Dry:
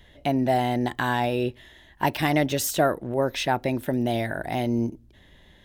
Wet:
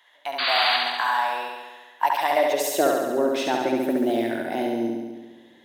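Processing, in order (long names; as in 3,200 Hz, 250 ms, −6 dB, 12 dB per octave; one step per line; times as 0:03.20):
high-pass filter sweep 990 Hz → 310 Hz, 0:01.95–0:02.96
0:00.38–0:00.77: sound drawn into the spectrogram noise 940–4,800 Hz −21 dBFS
0:03.75–0:04.31: noise that follows the level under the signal 33 dB
flutter between parallel walls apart 11.9 metres, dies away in 1.3 s
level −3.5 dB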